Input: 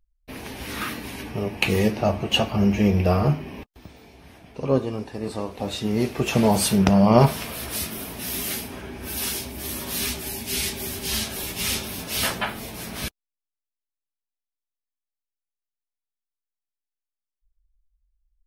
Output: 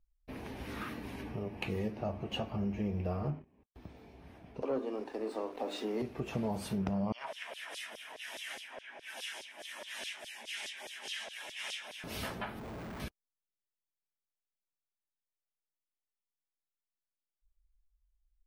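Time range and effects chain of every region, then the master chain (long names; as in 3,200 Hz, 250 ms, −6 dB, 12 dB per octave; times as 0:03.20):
0:03.30–0:03.75: noise gate −33 dBFS, range −22 dB + low-pass filter 1,900 Hz 6 dB per octave
0:04.62–0:06.02: Butterworth high-pass 250 Hz 48 dB per octave + mains-hum notches 50/100/150/200/250/300/350 Hz + leveller curve on the samples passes 2
0:07.12–0:12.04: loudspeaker in its box 180–9,600 Hz, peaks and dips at 390 Hz −8 dB, 820 Hz −4 dB, 1,200 Hz −9 dB, 1,800 Hz +5 dB, 3,100 Hz +5 dB, 4,400 Hz −9 dB + auto-filter high-pass saw down 4.8 Hz 510–4,800 Hz
0:12.59–0:13.00: low-pass filter 2,300 Hz 24 dB per octave + comparator with hysteresis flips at −52 dBFS
whole clip: parametric band 13,000 Hz −13 dB 2.9 octaves; downward compressor 2 to 1, threshold −34 dBFS; level −5.5 dB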